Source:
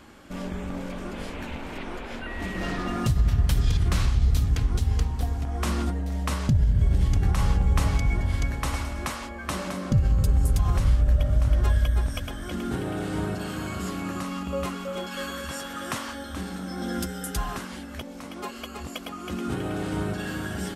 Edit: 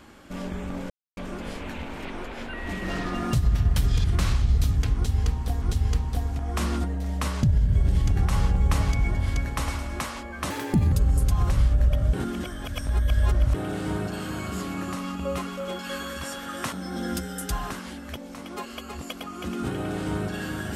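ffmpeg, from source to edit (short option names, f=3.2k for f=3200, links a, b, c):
-filter_complex "[0:a]asplit=8[a][b][c][d][e][f][g][h];[a]atrim=end=0.9,asetpts=PTS-STARTPTS,afade=t=out:st=0.896:d=0.004:c=hsin,apad=pad_dur=0.27[i];[b]atrim=start=0.9:end=5.352,asetpts=PTS-STARTPTS,afade=t=in:d=0.004:c=hsin[j];[c]atrim=start=4.678:end=9.564[k];[d]atrim=start=9.56:end=10.2,asetpts=PTS-STARTPTS,asetrate=66591,aresample=44100,atrim=end_sample=18691,asetpts=PTS-STARTPTS[l];[e]atrim=start=10.196:end=11.412[m];[f]atrim=start=11.408:end=12.822,asetpts=PTS-STARTPTS,areverse[n];[g]atrim=start=12.818:end=16.002[o];[h]atrim=start=16.578[p];[i][j]concat=n=2:v=0:a=1[q];[q][k]acrossfade=d=0.004:c1=hsin:c2=hsin[r];[r][l]acrossfade=d=0.004:c1=hsin:c2=hsin[s];[s][m]acrossfade=d=0.004:c1=hsin:c2=hsin[t];[t][n]acrossfade=d=0.004:c1=hsin:c2=hsin[u];[u][o]acrossfade=d=0.004:c1=hsin:c2=hsin[v];[v][p]acrossfade=d=0.004:c1=hsin:c2=hsin"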